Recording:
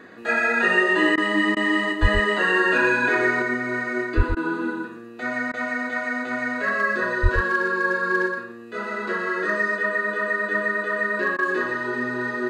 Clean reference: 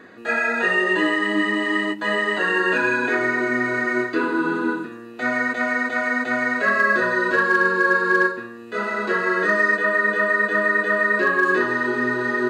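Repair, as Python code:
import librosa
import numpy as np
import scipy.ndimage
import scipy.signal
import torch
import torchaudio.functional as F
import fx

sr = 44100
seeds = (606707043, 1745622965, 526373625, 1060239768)

y = fx.highpass(x, sr, hz=140.0, slope=24, at=(2.01, 2.13), fade=0.02)
y = fx.highpass(y, sr, hz=140.0, slope=24, at=(4.16, 4.28), fade=0.02)
y = fx.highpass(y, sr, hz=140.0, slope=24, at=(7.22, 7.34), fade=0.02)
y = fx.fix_interpolate(y, sr, at_s=(1.16, 1.55, 4.35, 5.52, 11.37), length_ms=15.0)
y = fx.fix_echo_inverse(y, sr, delay_ms=120, level_db=-7.0)
y = fx.fix_level(y, sr, at_s=3.42, step_db=5.0)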